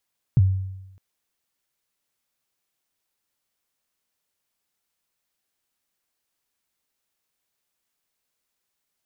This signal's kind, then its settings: kick drum length 0.61 s, from 150 Hz, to 95 Hz, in 32 ms, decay 0.95 s, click off, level -10.5 dB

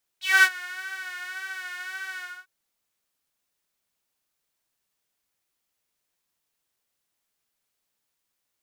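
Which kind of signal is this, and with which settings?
synth patch with vibrato F#4, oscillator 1 saw, interval +12 st, sub -29.5 dB, filter highpass, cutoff 1400 Hz, Q 7.5, filter envelope 1.5 oct, filter decay 0.12 s, filter sustain 15%, attack 0.22 s, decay 0.06 s, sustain -20.5 dB, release 0.27 s, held 1.98 s, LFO 1.8 Hz, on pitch 53 cents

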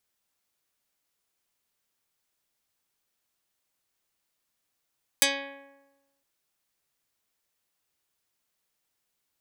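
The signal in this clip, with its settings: plucked string C#4, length 1.01 s, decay 1.12 s, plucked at 0.2, dark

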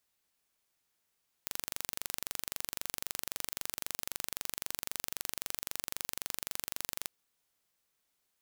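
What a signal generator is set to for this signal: pulse train 23.8/s, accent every 0, -8 dBFS 5.62 s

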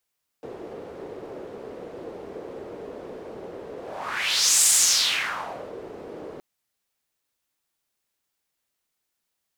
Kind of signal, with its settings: whoosh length 5.97 s, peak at 4.24, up 0.96 s, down 1.14 s, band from 440 Hz, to 8000 Hz, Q 3, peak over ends 21 dB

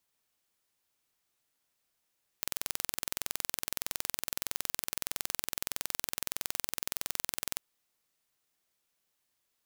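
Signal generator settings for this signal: pulse train 21.6/s, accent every 0, -5 dBFS 5.18 s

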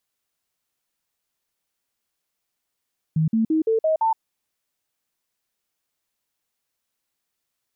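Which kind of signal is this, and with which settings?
stepped sine 158 Hz up, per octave 2, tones 6, 0.12 s, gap 0.05 s -16.5 dBFS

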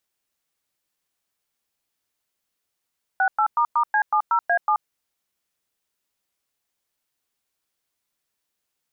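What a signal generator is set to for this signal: DTMF "68**C70A7", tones 80 ms, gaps 0.105 s, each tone -19 dBFS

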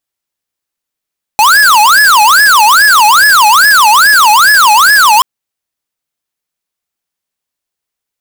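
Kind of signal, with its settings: siren wail 833–1710 Hz 2.4/s square -5 dBFS 3.83 s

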